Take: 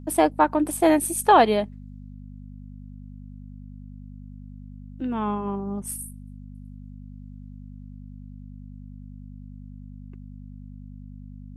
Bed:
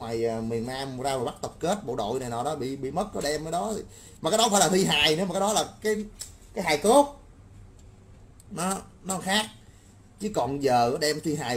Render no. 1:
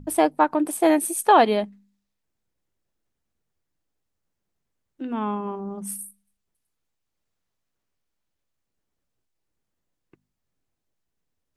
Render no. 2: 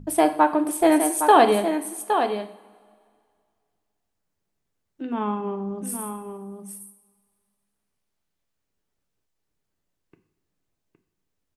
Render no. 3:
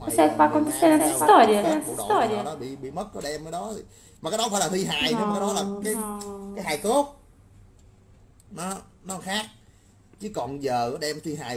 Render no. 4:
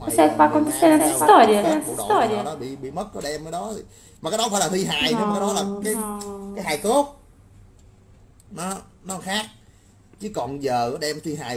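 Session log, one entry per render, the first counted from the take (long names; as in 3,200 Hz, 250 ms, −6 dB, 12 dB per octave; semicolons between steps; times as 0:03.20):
hum removal 50 Hz, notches 5
on a send: single-tap delay 814 ms −7.5 dB; on the sum: coupled-rooms reverb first 0.56 s, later 2.2 s, from −18 dB, DRR 7.5 dB
mix in bed −3.5 dB
level +3 dB; brickwall limiter −1 dBFS, peak gain reduction 1 dB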